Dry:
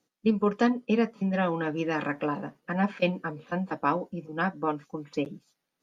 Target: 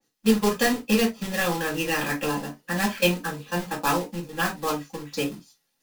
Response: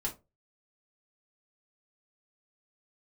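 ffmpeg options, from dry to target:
-filter_complex "[0:a]highshelf=frequency=2100:gain=11.5,acrusher=bits=2:mode=log:mix=0:aa=0.000001[link_01];[1:a]atrim=start_sample=2205,atrim=end_sample=3969[link_02];[link_01][link_02]afir=irnorm=-1:irlink=0,adynamicequalizer=threshold=0.0112:dfrequency=2800:dqfactor=0.7:tfrequency=2800:tqfactor=0.7:attack=5:release=100:ratio=0.375:range=2.5:mode=boostabove:tftype=highshelf,volume=-2.5dB"

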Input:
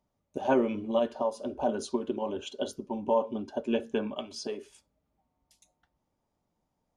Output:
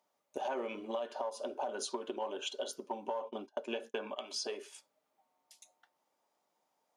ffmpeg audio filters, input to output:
ffmpeg -i in.wav -filter_complex "[0:a]asettb=1/sr,asplit=3[link_01][link_02][link_03];[link_01]atrim=end=3.204[link_04];[link_02]atrim=start=3.2:end=4.24,asetpts=PTS-STARTPTS,afade=type=in:duration=0.004:curve=qsin,afade=type=out:start_time=1.036:duration=0.004:curve=qsin,agate=range=-28dB:threshold=-37dB:ratio=16:detection=peak[link_05];[link_03]atrim=start=4.236[link_06];[link_04][link_05]acrossfade=duration=0.004:curve1=hsin:curve2=qsin[link_07];[link_07][link_06]acrossfade=duration=0.004:curve1=qsin:curve2=hsin,asplit=2[link_08][link_09];[link_09]aeval=exprs='clip(val(0),-1,0.0299)':channel_layout=same,volume=-10.5dB[link_10];[link_08][link_10]amix=inputs=2:normalize=0,highpass=570,alimiter=limit=-23dB:level=0:latency=1:release=116,acompressor=threshold=-38dB:ratio=3,volume=2.5dB" out.wav

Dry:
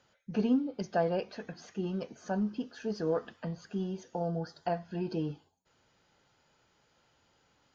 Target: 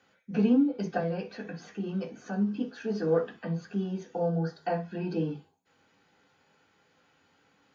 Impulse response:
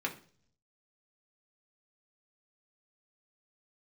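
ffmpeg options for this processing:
-filter_complex "[0:a]asettb=1/sr,asplit=3[link_01][link_02][link_03];[link_01]atrim=end=0.974[link_04];[link_02]atrim=start=0.97:end=2.54,asetpts=PTS-STARTPTS,afade=type=in:duration=0.004:curve=qsin,afade=type=out:start_time=1.566:duration=0.004:curve=qsin,acrossover=split=200|3000[link_05][link_06][link_07];[link_06]acompressor=threshold=-39dB:ratio=2[link_08];[link_05][link_08][link_07]amix=inputs=3:normalize=0[link_09];[link_03]atrim=start=2.536[link_10];[link_04][link_09]acrossfade=duration=0.004:curve1=hsin:curve2=qsin[link_11];[link_11][link_10]acrossfade=duration=0.004:curve1=qsin:curve2=hsin[link_12];[1:a]atrim=start_sample=2205,atrim=end_sample=3528[link_13];[link_12][link_13]afir=irnorm=-1:irlink=0"

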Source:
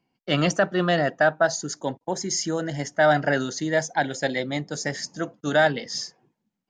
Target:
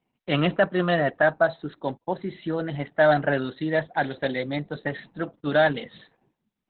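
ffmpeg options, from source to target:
ffmpeg -i in.wav -ar 48000 -c:a libopus -b:a 8k out.opus

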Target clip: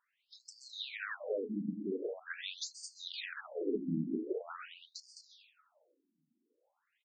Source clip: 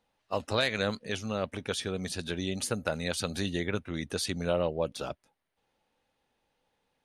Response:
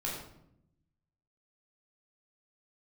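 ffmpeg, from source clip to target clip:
-filter_complex "[0:a]equalizer=frequency=840:width=3.6:gain=-9,aecho=1:1:210:0.422,acompressor=threshold=-31dB:ratio=6,highshelf=frequency=3800:gain=-9.5,asplit=2[link_01][link_02];[1:a]atrim=start_sample=2205,adelay=128[link_03];[link_02][link_03]afir=irnorm=-1:irlink=0,volume=-10.5dB[link_04];[link_01][link_04]amix=inputs=2:normalize=0,afftfilt=real='re*between(b*sr/1024,230*pow(6300/230,0.5+0.5*sin(2*PI*0.44*pts/sr))/1.41,230*pow(6300/230,0.5+0.5*sin(2*PI*0.44*pts/sr))*1.41)':imag='im*between(b*sr/1024,230*pow(6300/230,0.5+0.5*sin(2*PI*0.44*pts/sr))/1.41,230*pow(6300/230,0.5+0.5*sin(2*PI*0.44*pts/sr))*1.41)':win_size=1024:overlap=0.75,volume=5dB"

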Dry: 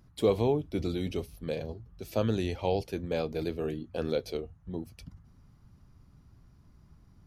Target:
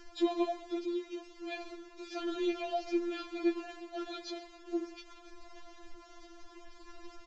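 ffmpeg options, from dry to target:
ffmpeg -i in.wav -filter_complex "[0:a]aeval=exprs='val(0)+0.5*0.00944*sgn(val(0))':channel_layout=same,aecho=1:1:134|268:0.15|0.0344,asettb=1/sr,asplit=3[link_01][link_02][link_03];[link_01]atrim=end=0.814[link_04];[link_02]atrim=start=0.81:end=1.46,asetpts=PTS-STARTPTS,afade=type=in:duration=0.004:curve=qsin,afade=type=out:start_time=0.646:duration=0.004:curve=qsin,acompressor=threshold=-38dB:ratio=2.5[link_05];[link_03]atrim=start=1.456[link_06];[link_04][link_05]acrossfade=duration=0.004:curve1=hsin:curve2=qsin[link_07];[link_07][link_06]acrossfade=duration=0.004:curve1=qsin:curve2=hsin,acrusher=bits=8:mix=0:aa=0.000001,acrossover=split=6000[link_08][link_09];[link_09]acompressor=threshold=-58dB:ratio=4:attack=1:release=60[link_10];[link_08][link_10]amix=inputs=2:normalize=0,aresample=16000,aresample=44100,afftfilt=real='re*4*eq(mod(b,16),0)':imag='im*4*eq(mod(b,16),0)':win_size=2048:overlap=0.75" out.wav

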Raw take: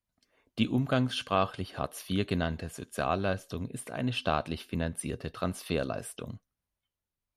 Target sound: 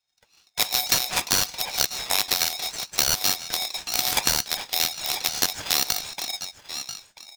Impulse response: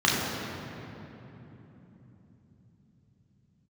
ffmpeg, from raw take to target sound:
-filter_complex "[0:a]afftfilt=real='real(if(lt(b,272),68*(eq(floor(b/68),0)*3+eq(floor(b/68),1)*2+eq(floor(b/68),2)*1+eq(floor(b/68),3)*0)+mod(b,68),b),0)':imag='imag(if(lt(b,272),68*(eq(floor(b/68),0)*3+eq(floor(b/68),1)*2+eq(floor(b/68),2)*1+eq(floor(b/68),3)*0)+mod(b,68),b),0)':win_size=2048:overlap=0.75,aecho=1:1:1.2:0.61,aecho=1:1:988:0.178,dynaudnorm=framelen=110:gausssize=9:maxgain=4dB,asplit=2[link_01][link_02];[link_02]acrusher=bits=5:mix=0:aa=0.000001,volume=-11dB[link_03];[link_01][link_03]amix=inputs=2:normalize=0,flanger=delay=4.7:depth=6.4:regen=-66:speed=0.63:shape=sinusoidal,aresample=16000,aeval=exprs='0.422*sin(PI/2*3.55*val(0)/0.422)':channel_layout=same,aresample=44100,aeval=exprs='0.708*(cos(1*acos(clip(val(0)/0.708,-1,1)))-cos(1*PI/2))+0.251*(cos(3*acos(clip(val(0)/0.708,-1,1)))-cos(3*PI/2))+0.0141*(cos(6*acos(clip(val(0)/0.708,-1,1)))-cos(6*PI/2))+0.0251*(cos(7*acos(clip(val(0)/0.708,-1,1)))-cos(7*PI/2))':channel_layout=same,acompressor=threshold=-24dB:ratio=6,aeval=exprs='val(0)*sgn(sin(2*PI*740*n/s))':channel_layout=same,volume=6.5dB"

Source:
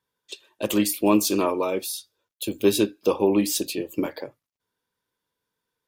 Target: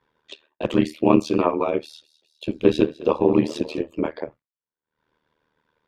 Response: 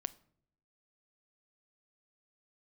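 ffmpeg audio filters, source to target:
-filter_complex "[0:a]acompressor=mode=upward:threshold=-31dB:ratio=2.5,lowpass=2500,agate=range=-33dB:threshold=-44dB:ratio=3:detection=peak,asettb=1/sr,asplit=3[link_01][link_02][link_03];[link_01]atrim=end=1.814[link_04];[link_02]atrim=start=1.81:end=3.83,asetpts=PTS-STARTPTS,afade=type=in:duration=0.004:curve=qsin,afade=type=out:start_time=2.016:duration=0.004:curve=qsin,asplit=7[link_05][link_06][link_07][link_08][link_09][link_10][link_11];[link_06]adelay=205,afreqshift=35,volume=-18.5dB[link_12];[link_07]adelay=410,afreqshift=70,volume=-22.5dB[link_13];[link_08]adelay=615,afreqshift=105,volume=-26.5dB[link_14];[link_09]adelay=820,afreqshift=140,volume=-30.5dB[link_15];[link_10]adelay=1025,afreqshift=175,volume=-34.6dB[link_16];[link_11]adelay=1230,afreqshift=210,volume=-38.6dB[link_17];[link_05][link_12][link_13][link_14][link_15][link_16][link_17]amix=inputs=7:normalize=0,atrim=end_sample=89082[link_18];[link_03]atrim=start=3.826[link_19];[link_04][link_18]acrossfade=duration=0.004:curve1=hsin:curve2=qsin[link_20];[link_20][link_19]acrossfade=duration=0.004:curve1=qsin:curve2=hsin,tremolo=f=77:d=0.947,volume=6.5dB"

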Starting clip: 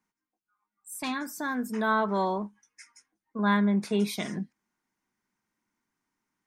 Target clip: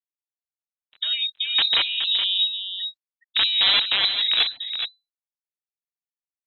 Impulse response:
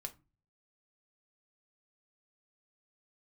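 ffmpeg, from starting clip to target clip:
-filter_complex "[0:a]afftfilt=real='re*gte(hypot(re,im),0.0178)':imag='im*gte(hypot(re,im),0.0178)':win_size=1024:overlap=0.75,acrossover=split=400|1800[link_01][link_02][link_03];[link_03]aeval=exprs='(mod(42.2*val(0)+1,2)-1)/42.2':channel_layout=same[link_04];[link_01][link_02][link_04]amix=inputs=3:normalize=0,equalizer=frequency=1400:width=0.66:gain=9.5,acompressor=threshold=-23dB:ratio=8,alimiter=level_in=0.5dB:limit=-24dB:level=0:latency=1:release=24,volume=-0.5dB,dynaudnorm=framelen=300:gausssize=3:maxgain=5.5dB,tiltshelf=frequency=890:gain=10,aeval=exprs='(mod(4.73*val(0)+1,2)-1)/4.73':channel_layout=same,asplit=2[link_05][link_06];[link_06]adelay=419.8,volume=-8dB,highshelf=frequency=4000:gain=-9.45[link_07];[link_05][link_07]amix=inputs=2:normalize=0,lowpass=frequency=3400:width_type=q:width=0.5098,lowpass=frequency=3400:width_type=q:width=0.6013,lowpass=frequency=3400:width_type=q:width=0.9,lowpass=frequency=3400:width_type=q:width=2.563,afreqshift=-4000" -ar 48000 -c:a libopus -b:a 32k

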